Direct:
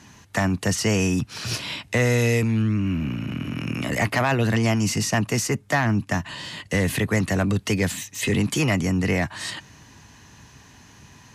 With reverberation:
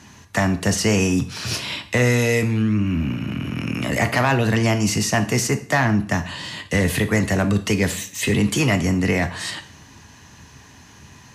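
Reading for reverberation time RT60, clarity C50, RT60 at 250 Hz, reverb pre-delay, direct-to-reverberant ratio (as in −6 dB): 0.50 s, 14.0 dB, 0.50 s, 6 ms, 8.5 dB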